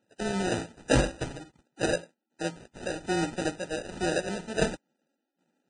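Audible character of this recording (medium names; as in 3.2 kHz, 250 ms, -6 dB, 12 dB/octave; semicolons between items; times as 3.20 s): aliases and images of a low sample rate 1.1 kHz, jitter 0%; tremolo saw down 1.3 Hz, depth 75%; Vorbis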